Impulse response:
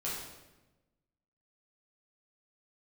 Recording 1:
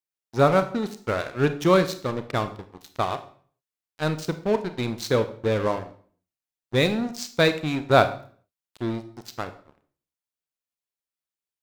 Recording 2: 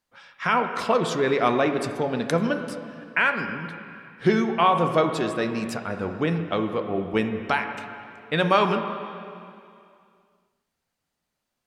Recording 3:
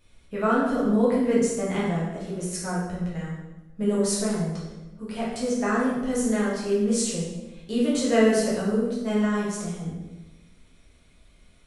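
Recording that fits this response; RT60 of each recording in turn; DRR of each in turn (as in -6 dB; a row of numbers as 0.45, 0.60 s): 3; 0.45, 2.4, 1.1 s; 10.0, 5.5, -7.5 dB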